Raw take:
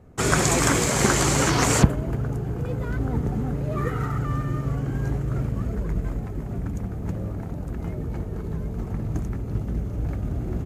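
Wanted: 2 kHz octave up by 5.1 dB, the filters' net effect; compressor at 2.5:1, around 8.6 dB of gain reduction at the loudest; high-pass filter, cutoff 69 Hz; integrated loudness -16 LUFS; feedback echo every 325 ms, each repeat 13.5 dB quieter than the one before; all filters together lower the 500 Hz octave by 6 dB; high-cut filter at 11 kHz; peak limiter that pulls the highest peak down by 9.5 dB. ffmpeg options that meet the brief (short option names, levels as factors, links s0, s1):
-af "highpass=69,lowpass=11000,equalizer=f=500:t=o:g=-8.5,equalizer=f=2000:t=o:g=7,acompressor=threshold=0.0631:ratio=2.5,alimiter=limit=0.119:level=0:latency=1,aecho=1:1:325|650:0.211|0.0444,volume=5.01"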